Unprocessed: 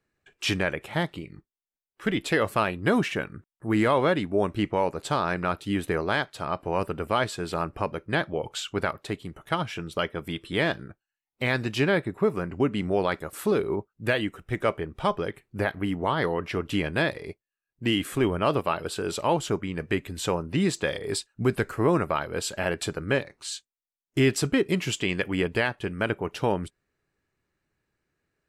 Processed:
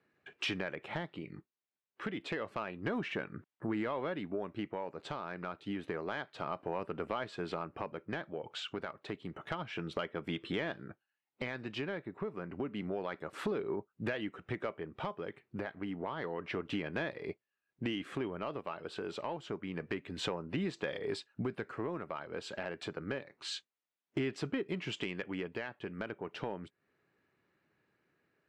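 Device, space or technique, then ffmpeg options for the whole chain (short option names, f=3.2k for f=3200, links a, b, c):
AM radio: -af "highpass=150,lowpass=3.3k,acompressor=threshold=-38dB:ratio=5,asoftclip=type=tanh:threshold=-26dB,tremolo=f=0.29:d=0.34,volume=4.5dB"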